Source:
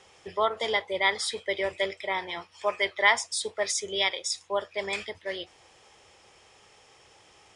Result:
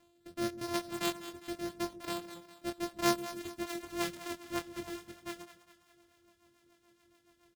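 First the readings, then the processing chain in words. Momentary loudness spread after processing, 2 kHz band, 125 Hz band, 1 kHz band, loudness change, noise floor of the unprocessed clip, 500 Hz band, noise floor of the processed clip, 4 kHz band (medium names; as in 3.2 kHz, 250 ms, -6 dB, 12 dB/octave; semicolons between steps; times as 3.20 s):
13 LU, -16.0 dB, +3.0 dB, -9.5 dB, -9.5 dB, -58 dBFS, -9.5 dB, -70 dBFS, -12.0 dB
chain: sorted samples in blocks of 128 samples; rotary cabinet horn 0.85 Hz, later 7 Hz, at 2.97 s; reverb removal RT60 0.9 s; doubling 23 ms -6 dB; on a send: two-band feedback delay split 500 Hz, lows 135 ms, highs 203 ms, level -13 dB; on the sum: trim -8 dB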